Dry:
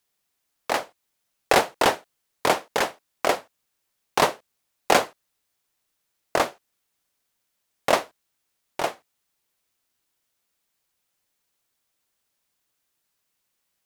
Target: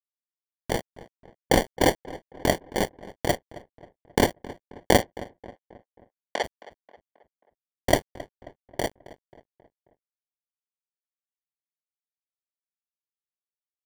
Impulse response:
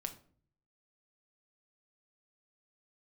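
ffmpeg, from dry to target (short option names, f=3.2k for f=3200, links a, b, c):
-filter_complex "[0:a]acrusher=samples=34:mix=1:aa=0.000001,aeval=exprs='sgn(val(0))*max(abs(val(0))-0.0251,0)':c=same,asplit=3[a][b][c];[a]afade=t=out:st=5.01:d=0.02[d];[b]highpass=600,lowpass=5.1k,afade=t=in:st=5.01:d=0.02,afade=t=out:st=6.43:d=0.02[e];[c]afade=t=in:st=6.43:d=0.02[f];[d][e][f]amix=inputs=3:normalize=0,asplit=2[g][h];[h]adelay=268,lowpass=f=2.3k:p=1,volume=-18dB,asplit=2[i][j];[j]adelay=268,lowpass=f=2.3k:p=1,volume=0.5,asplit=2[k][l];[l]adelay=268,lowpass=f=2.3k:p=1,volume=0.5,asplit=2[m][n];[n]adelay=268,lowpass=f=2.3k:p=1,volume=0.5[o];[i][k][m][o]amix=inputs=4:normalize=0[p];[g][p]amix=inputs=2:normalize=0"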